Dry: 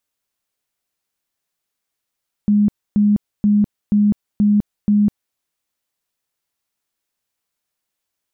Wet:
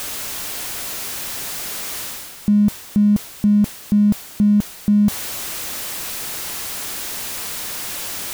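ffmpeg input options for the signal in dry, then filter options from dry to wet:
-f lavfi -i "aevalsrc='0.299*sin(2*PI*207*mod(t,0.48))*lt(mod(t,0.48),42/207)':duration=2.88:sample_rate=44100"
-af "aeval=exprs='val(0)+0.5*0.0251*sgn(val(0))':channel_layout=same,areverse,acompressor=mode=upward:threshold=-20dB:ratio=2.5,areverse"

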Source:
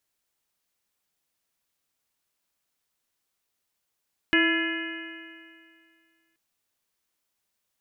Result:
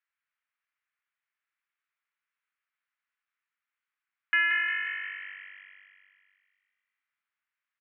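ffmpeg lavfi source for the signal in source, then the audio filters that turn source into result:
-f lavfi -i "aevalsrc='0.0891*pow(10,-3*t/2.18)*sin(2*PI*326.64*t)+0.0178*pow(10,-3*t/2.18)*sin(2*PI*657.07*t)+0.015*pow(10,-3*t/2.18)*sin(2*PI*995.02*t)+0.02*pow(10,-3*t/2.18)*sin(2*PI*1344.07*t)+0.0944*pow(10,-3*t/2.18)*sin(2*PI*1707.61*t)+0.0562*pow(10,-3*t/2.18)*sin(2*PI*2088.8*t)+0.0398*pow(10,-3*t/2.18)*sin(2*PI*2490.52*t)+0.0473*pow(10,-3*t/2.18)*sin(2*PI*2915.37*t)':duration=2.03:sample_rate=44100"
-filter_complex "[0:a]asuperpass=centerf=1700:order=4:qfactor=1.4,asplit=2[link_01][link_02];[link_02]asplit=7[link_03][link_04][link_05][link_06][link_07][link_08][link_09];[link_03]adelay=177,afreqshift=48,volume=-7.5dB[link_10];[link_04]adelay=354,afreqshift=96,volume=-12.4dB[link_11];[link_05]adelay=531,afreqshift=144,volume=-17.3dB[link_12];[link_06]adelay=708,afreqshift=192,volume=-22.1dB[link_13];[link_07]adelay=885,afreqshift=240,volume=-27dB[link_14];[link_08]adelay=1062,afreqshift=288,volume=-31.9dB[link_15];[link_09]adelay=1239,afreqshift=336,volume=-36.8dB[link_16];[link_10][link_11][link_12][link_13][link_14][link_15][link_16]amix=inputs=7:normalize=0[link_17];[link_01][link_17]amix=inputs=2:normalize=0"

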